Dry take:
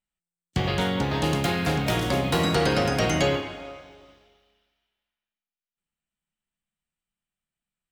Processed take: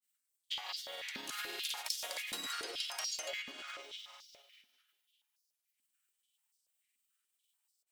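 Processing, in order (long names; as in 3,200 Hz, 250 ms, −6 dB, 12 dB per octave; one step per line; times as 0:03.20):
granular cloud, spray 100 ms, pitch spread up and down by 0 semitones
downward compressor 5 to 1, threshold −41 dBFS, peak gain reduction 19 dB
first difference
high-pass on a step sequencer 6.9 Hz 240–5,000 Hz
level +12 dB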